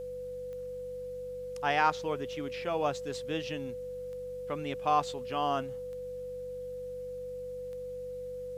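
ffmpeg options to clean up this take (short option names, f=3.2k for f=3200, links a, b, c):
-af "adeclick=t=4,bandreject=f=48.1:t=h:w=4,bandreject=f=96.2:t=h:w=4,bandreject=f=144.3:t=h:w=4,bandreject=f=192.4:t=h:w=4,bandreject=f=500:w=30,agate=range=-21dB:threshold=-32dB"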